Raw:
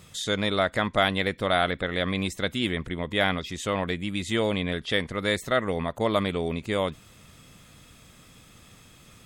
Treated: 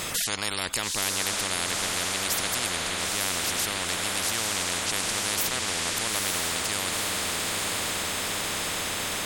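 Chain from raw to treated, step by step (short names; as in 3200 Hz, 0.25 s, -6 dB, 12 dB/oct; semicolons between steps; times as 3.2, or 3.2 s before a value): on a send: diffused feedback echo 0.925 s, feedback 54%, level -5 dB; on the sum: spectral compressor 10:1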